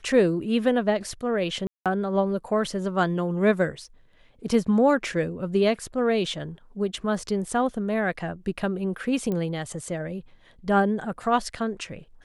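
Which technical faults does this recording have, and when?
0:01.67–0:01.86: drop-out 187 ms
0:09.32: click −18 dBFS

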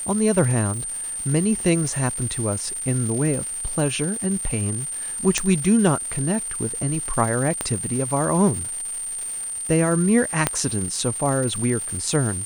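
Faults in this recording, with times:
surface crackle 440 per second −30 dBFS
whistle 8,900 Hz −27 dBFS
0:00.72–0:01.19: clipping −24.5 dBFS
0:05.38: click −5 dBFS
0:07.61: click −9 dBFS
0:10.47: click −3 dBFS

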